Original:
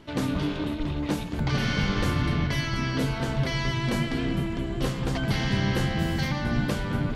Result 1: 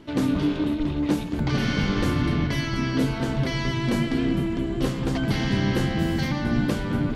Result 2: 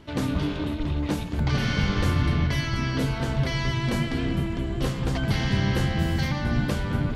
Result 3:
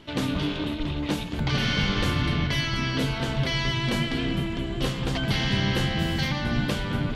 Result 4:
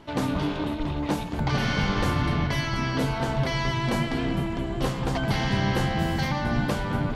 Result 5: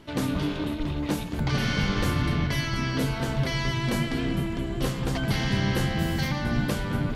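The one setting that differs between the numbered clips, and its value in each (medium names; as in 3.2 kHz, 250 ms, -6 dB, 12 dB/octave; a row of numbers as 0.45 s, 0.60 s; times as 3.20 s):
peaking EQ, frequency: 290 Hz, 74 Hz, 3.2 kHz, 840 Hz, 14 kHz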